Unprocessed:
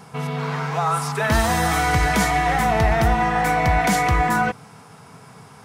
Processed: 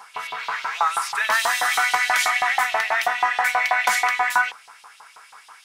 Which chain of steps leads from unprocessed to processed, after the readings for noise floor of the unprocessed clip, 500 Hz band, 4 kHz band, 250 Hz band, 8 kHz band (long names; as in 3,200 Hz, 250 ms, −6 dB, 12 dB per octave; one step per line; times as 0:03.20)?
−46 dBFS, −9.0 dB, +3.0 dB, below −25 dB, +0.5 dB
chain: auto-filter high-pass saw up 6.2 Hz 850–3,700 Hz